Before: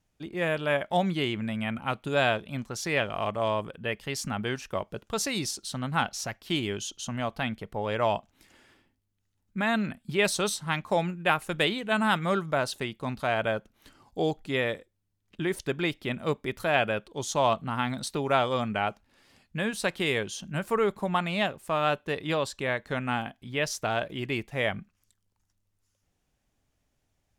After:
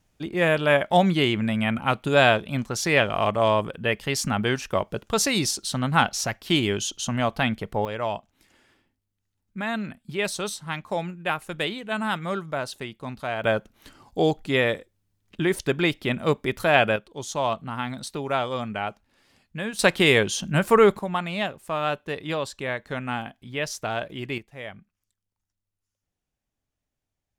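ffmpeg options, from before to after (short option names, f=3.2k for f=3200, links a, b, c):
-af "asetnsamples=n=441:p=0,asendcmd='7.85 volume volume -2dB;13.44 volume volume 6dB;16.96 volume volume -1dB;19.79 volume volume 9.5dB;20.99 volume volume 0dB;24.38 volume volume -9.5dB',volume=7dB"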